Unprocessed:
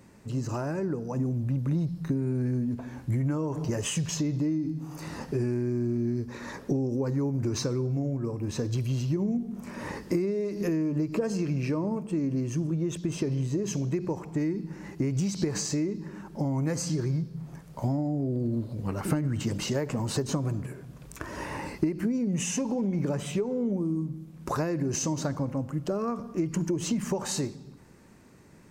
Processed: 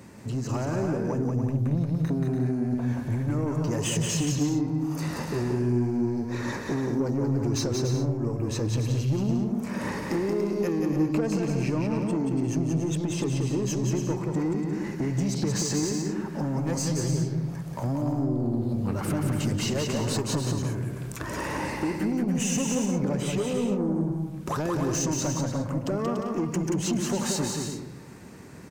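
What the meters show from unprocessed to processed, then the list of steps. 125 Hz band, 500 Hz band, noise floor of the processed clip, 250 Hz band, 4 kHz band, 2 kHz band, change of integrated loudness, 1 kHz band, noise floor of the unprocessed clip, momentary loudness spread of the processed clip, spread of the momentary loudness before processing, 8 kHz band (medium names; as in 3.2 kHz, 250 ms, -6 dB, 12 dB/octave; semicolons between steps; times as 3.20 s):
+2.5 dB, +2.5 dB, -36 dBFS, +2.5 dB, +4.0 dB, +4.5 dB, +2.5 dB, +4.5 dB, -48 dBFS, 5 LU, 8 LU, +4.0 dB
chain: high-pass 59 Hz; in parallel at +2 dB: compression, threshold -37 dBFS, peak gain reduction 15.5 dB; on the sum: saturation -22.5 dBFS, distortion -15 dB; bouncing-ball echo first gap 180 ms, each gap 0.6×, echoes 5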